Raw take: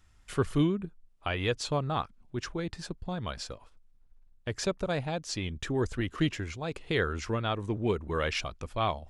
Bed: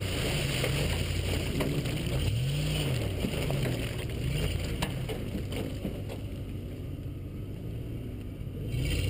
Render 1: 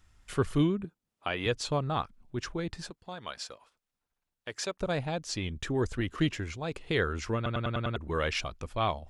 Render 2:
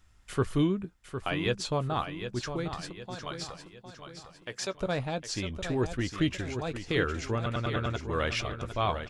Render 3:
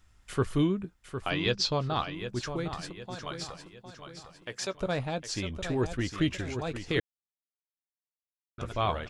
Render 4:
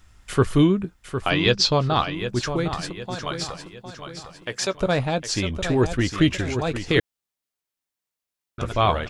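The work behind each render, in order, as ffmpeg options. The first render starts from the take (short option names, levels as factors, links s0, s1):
-filter_complex "[0:a]asettb=1/sr,asplit=3[s0][s1][s2];[s0]atrim=end=0.844[s3];[s1]atrim=start=0.84:end=1.46,asetpts=PTS-STARTPTS,afade=t=in:d=0.004:c=qsin,afade=t=out:st=0.616:d=0.004:c=qsin,highpass=150[s4];[s2]atrim=start=1.456[s5];[s3][s4]acrossfade=d=0.004:c1=hsin:c2=qsin[s6];[s6][s5]acrossfade=d=0.004:c1=qsin:c2=hsin,asettb=1/sr,asplit=3[s7][s8][s9];[s7]atrim=end=2.904[s10];[s8]atrim=start=2.9:end=4.8,asetpts=PTS-STARTPTS,afade=t=in:d=0.004:c=qsin,afade=t=out:st=1.896:d=0.004:c=qsin,highpass=f=720:p=1[s11];[s9]atrim=start=4.796[s12];[s10][s11]acrossfade=d=0.004:c1=hsin:c2=qsin[s13];[s13][s12]acrossfade=d=0.004:c1=qsin:c2=hsin,asplit=7[s14][s15][s16][s17][s18][s19][s20];[s14]atrim=end=7.462[s21];[s15]atrim=start=7.358:end=7.462[s22];[s16]atrim=start=7.358:end=7.462[s23];[s17]atrim=start=7.358:end=7.462[s24];[s18]atrim=start=7.358:end=7.462[s25];[s19]atrim=start=7.358:end=7.462[s26];[s20]atrim=start=7.958[s27];[s21][s22]acrossfade=d=0.004:c1=hsin:c2=hsin[s28];[s28][s23]acrossfade=d=0.004:c1=hsin:c2=hsin[s29];[s29][s24]acrossfade=d=0.004:c1=hsin:c2=hsin[s30];[s30][s25]acrossfade=d=0.004:c1=hsin:c2=hsin[s31];[s31][s26]acrossfade=d=0.004:c1=hsin:c2=hsin[s32];[s32][s27]acrossfade=d=0.004:c1=hsin:c2=hsin"
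-filter_complex "[0:a]asplit=2[s0][s1];[s1]adelay=16,volume=0.211[s2];[s0][s2]amix=inputs=2:normalize=0,asplit=2[s3][s4];[s4]aecho=0:1:757|1514|2271|3028|3785:0.355|0.156|0.0687|0.0302|0.0133[s5];[s3][s5]amix=inputs=2:normalize=0"
-filter_complex "[0:a]asettb=1/sr,asplit=3[s0][s1][s2];[s0]atrim=end=1.304[s3];[s1]atrim=start=1.3:end=2.15,asetpts=PTS-STARTPTS,afade=t=in:d=0.004:c=qsin,afade=t=out:st=0.846:d=0.004:c=qsin,lowpass=f=5000:t=q:w=3.5[s4];[s2]atrim=start=2.146[s5];[s3][s4]acrossfade=d=0.004:c1=hsin:c2=qsin[s6];[s6][s5]acrossfade=d=0.004:c1=qsin:c2=hsin,asplit=3[s7][s8][s9];[s7]atrim=end=7,asetpts=PTS-STARTPTS,afade=t=out:st=6.996:d=0.004:c=hsin[s10];[s8]atrim=start=7:end=8.58,asetpts=PTS-STARTPTS,volume=0[s11];[s9]atrim=start=8.58,asetpts=PTS-STARTPTS,afade=t=in:d=0.004:c=hsin[s12];[s10][s11][s12]concat=n=3:v=0:a=1"
-af "volume=2.82"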